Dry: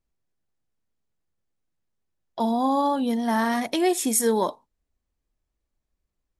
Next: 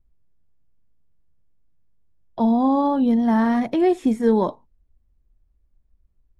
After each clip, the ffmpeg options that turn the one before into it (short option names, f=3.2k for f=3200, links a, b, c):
-filter_complex "[0:a]acrossover=split=2700[a][b];[b]acompressor=threshold=-35dB:ratio=4:attack=1:release=60[c];[a][c]amix=inputs=2:normalize=0,aemphasis=mode=reproduction:type=riaa"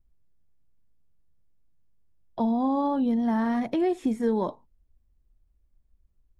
-af "acompressor=threshold=-21dB:ratio=2,volume=-3dB"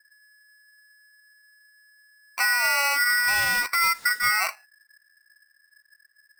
-filter_complex "[0:a]asplit=2[a][b];[b]volume=22dB,asoftclip=hard,volume=-22dB,volume=-10dB[c];[a][c]amix=inputs=2:normalize=0,aeval=exprs='val(0)*sgn(sin(2*PI*1700*n/s))':c=same"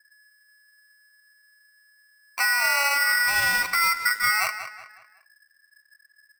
-filter_complex "[0:a]asplit=2[a][b];[b]adelay=185,lowpass=f=4.9k:p=1,volume=-10dB,asplit=2[c][d];[d]adelay=185,lowpass=f=4.9k:p=1,volume=0.4,asplit=2[e][f];[f]adelay=185,lowpass=f=4.9k:p=1,volume=0.4,asplit=2[g][h];[h]adelay=185,lowpass=f=4.9k:p=1,volume=0.4[i];[a][c][e][g][i]amix=inputs=5:normalize=0"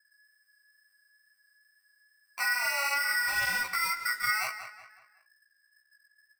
-af "flanger=delay=15:depth=2.7:speed=2.2,volume=-4.5dB"